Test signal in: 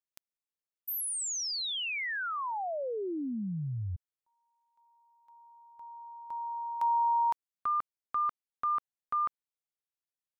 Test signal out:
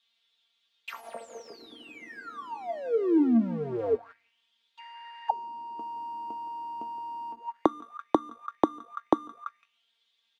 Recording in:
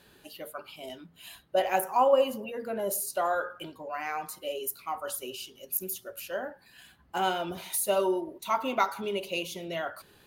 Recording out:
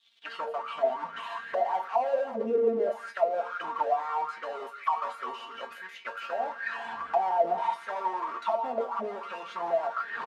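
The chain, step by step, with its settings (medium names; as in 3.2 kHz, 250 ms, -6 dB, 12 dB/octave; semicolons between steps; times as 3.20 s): square wave that keeps the level; recorder AGC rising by 77 dB/s, up to +33 dB; level-controlled noise filter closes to 1.9 kHz, open at -18.5 dBFS; high-pass 41 Hz 6 dB/octave; gate with hold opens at -32 dBFS; added noise pink -50 dBFS; treble shelf 4.7 kHz -7 dB; feedback comb 230 Hz, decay 0.17 s, harmonics all, mix 90%; feedback delay 168 ms, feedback 29%, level -14.5 dB; waveshaping leveller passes 2; auto-wah 310–3600 Hz, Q 6.8, down, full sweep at -19.5 dBFS; trim +7.5 dB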